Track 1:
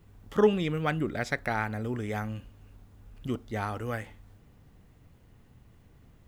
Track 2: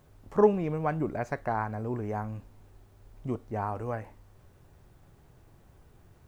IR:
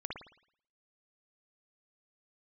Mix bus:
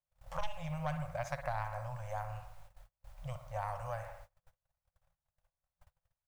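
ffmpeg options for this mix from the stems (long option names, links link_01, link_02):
-filter_complex "[0:a]volume=-17dB[link_01];[1:a]equalizer=frequency=110:width_type=o:width=1.2:gain=-13,aeval=exprs='0.316*(cos(1*acos(clip(val(0)/0.316,-1,1)))-cos(1*PI/2))+0.0178*(cos(6*acos(clip(val(0)/0.316,-1,1)))-cos(6*PI/2))':channel_layout=same,adelay=0.9,volume=0.5dB,asplit=2[link_02][link_03];[link_03]volume=-5.5dB[link_04];[2:a]atrim=start_sample=2205[link_05];[link_04][link_05]afir=irnorm=-1:irlink=0[link_06];[link_01][link_02][link_06]amix=inputs=3:normalize=0,agate=range=-37dB:threshold=-51dB:ratio=16:detection=peak,acrossover=split=190|3000[link_07][link_08][link_09];[link_08]acompressor=threshold=-35dB:ratio=6[link_10];[link_07][link_10][link_09]amix=inputs=3:normalize=0,afftfilt=real='re*(1-between(b*sr/4096,170,500))':imag='im*(1-between(b*sr/4096,170,500))':win_size=4096:overlap=0.75"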